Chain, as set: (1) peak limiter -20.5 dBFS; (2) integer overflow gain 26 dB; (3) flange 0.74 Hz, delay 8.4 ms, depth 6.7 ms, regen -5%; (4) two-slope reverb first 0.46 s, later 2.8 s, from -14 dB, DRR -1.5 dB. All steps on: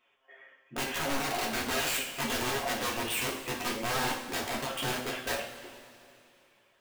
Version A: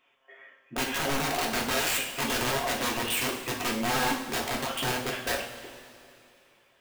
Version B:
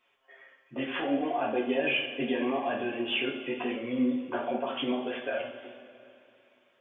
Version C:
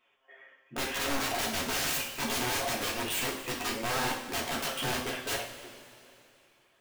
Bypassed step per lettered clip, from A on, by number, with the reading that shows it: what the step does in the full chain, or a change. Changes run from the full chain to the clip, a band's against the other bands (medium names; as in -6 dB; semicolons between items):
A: 3, loudness change +3.5 LU; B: 2, 250 Hz band +9.0 dB; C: 1, mean gain reduction 1.5 dB